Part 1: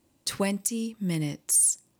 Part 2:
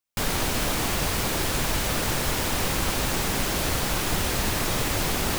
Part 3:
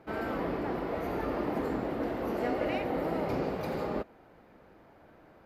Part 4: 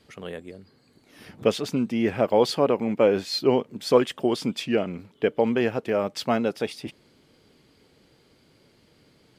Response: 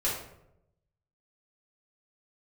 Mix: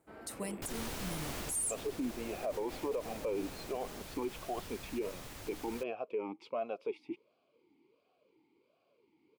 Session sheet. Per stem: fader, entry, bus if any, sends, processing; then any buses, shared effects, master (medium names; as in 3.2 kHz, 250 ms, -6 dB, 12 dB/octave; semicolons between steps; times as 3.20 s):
-14.0 dB, 0.00 s, no send, resonant high shelf 6.6 kHz +6.5 dB, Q 1.5
1.40 s -15.5 dB -> 1.88 s -22.5 dB, 0.45 s, no send, none
-17.0 dB, 0.00 s, no send, none
-0.5 dB, 0.25 s, no send, talking filter a-u 1.4 Hz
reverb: none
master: peak limiter -28 dBFS, peak gain reduction 11 dB